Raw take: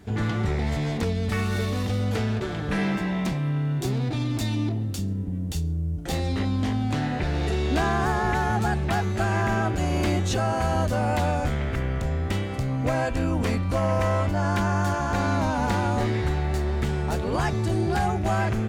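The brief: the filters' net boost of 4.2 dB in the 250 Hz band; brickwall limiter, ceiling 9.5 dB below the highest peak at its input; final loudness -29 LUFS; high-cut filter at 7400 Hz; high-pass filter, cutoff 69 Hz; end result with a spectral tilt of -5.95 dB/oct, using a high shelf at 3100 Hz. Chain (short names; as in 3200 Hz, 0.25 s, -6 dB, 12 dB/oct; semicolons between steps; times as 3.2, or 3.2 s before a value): HPF 69 Hz; LPF 7400 Hz; bell 250 Hz +5.5 dB; high shelf 3100 Hz +6 dB; gain -2 dB; limiter -20.5 dBFS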